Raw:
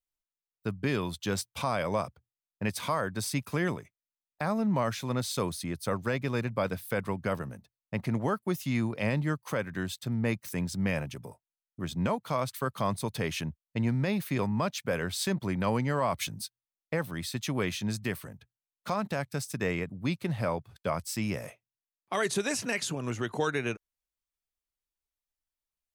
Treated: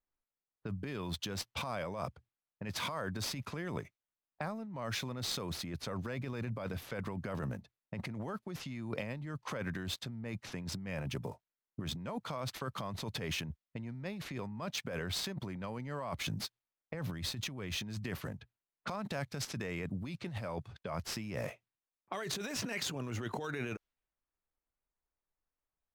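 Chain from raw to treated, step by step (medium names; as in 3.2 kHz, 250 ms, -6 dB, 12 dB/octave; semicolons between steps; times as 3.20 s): median filter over 5 samples; peak limiter -26.5 dBFS, peak gain reduction 9 dB; 16.94–17.77 s: bass shelf 130 Hz +9 dB; compressor with a negative ratio -39 dBFS, ratio -1; level-controlled noise filter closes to 1.5 kHz, open at -36.5 dBFS; 19.03–20.73 s: peaking EQ 7.2 kHz +3 dB 2.8 oct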